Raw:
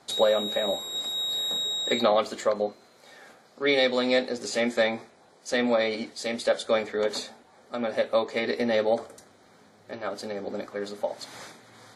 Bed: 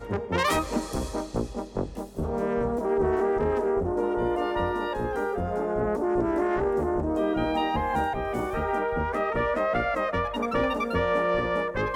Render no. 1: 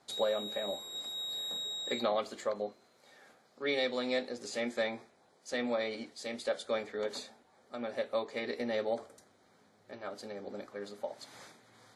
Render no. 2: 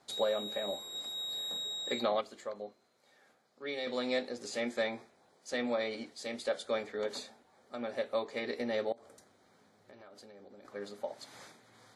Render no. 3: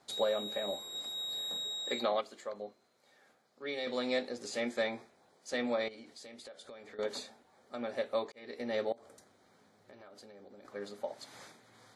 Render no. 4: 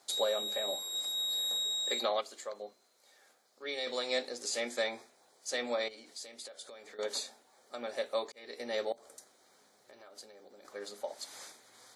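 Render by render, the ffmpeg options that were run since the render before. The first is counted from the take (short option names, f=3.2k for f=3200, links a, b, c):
-af "volume=-9.5dB"
-filter_complex "[0:a]asettb=1/sr,asplit=3[a][b][c];[a]atrim=end=8.924[d];[b]atrim=start=8.92:end=10.65,asetpts=PTS-STARTPTS,afade=t=in:d=0.004:c=qsin,afade=t=out:st=1.726:d=0.004:c=qsin,acompressor=threshold=-50dB:ratio=12:attack=3.2:release=140:knee=1:detection=peak[e];[c]atrim=start=10.646[f];[d][e]acrossfade=d=0.004:c1=hsin:c2=qsin[g];[g][f]acrossfade=d=0.004:c1=qsin:c2=hsin,asplit=3[h][i][j];[h]atrim=end=2.212[k];[i]atrim=start=2.208:end=3.872,asetpts=PTS-STARTPTS,volume=-6.5dB[l];[j]atrim=start=3.868[m];[k][l]acrossfade=d=0.004:c1=hsin:c2=hsin[n];[n][m]acrossfade=d=0.004:c1=hsin:c2=hsin"
-filter_complex "[0:a]asettb=1/sr,asplit=3[a][b][c];[a]atrim=end=1.704[d];[b]atrim=start=1.7:end=2.52,asetpts=PTS-STARTPTS,afade=t=in:d=0.004:c=qsin,afade=t=out:st=0.816:d=0.004:c=qsin,lowshelf=f=140:g=-10[e];[c]atrim=start=2.516[f];[d][e]acrossfade=d=0.004:c1=hsin:c2=qsin[g];[g][f]acrossfade=d=0.004:c1=qsin:c2=hsin,asettb=1/sr,asplit=3[h][i][j];[h]atrim=end=5.884[k];[i]atrim=start=5.88:end=6.99,asetpts=PTS-STARTPTS,afade=t=in:d=0.004:c=qsin,afade=t=out:st=1.106:d=0.004:c=qsin,acompressor=threshold=-47dB:ratio=8:attack=3.2:release=140:knee=1:detection=peak[l];[j]atrim=start=6.986[m];[k][l]acrossfade=d=0.004:c1=hsin:c2=qsin[n];[n][m]acrossfade=d=0.004:c1=qsin:c2=hsin,asplit=2[o][p];[o]atrim=end=8.32,asetpts=PTS-STARTPTS,afade=t=out:st=8.316:d=0.004:c=hsin[q];[p]atrim=start=8.32,asetpts=PTS-STARTPTS,afade=t=in:d=0.46[r];[q][r]concat=n=2:v=0:a=1"
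-af "bass=f=250:g=-12,treble=f=4k:g=10,bandreject=f=50:t=h:w=6,bandreject=f=100:t=h:w=6,bandreject=f=150:t=h:w=6,bandreject=f=200:t=h:w=6,bandreject=f=250:t=h:w=6"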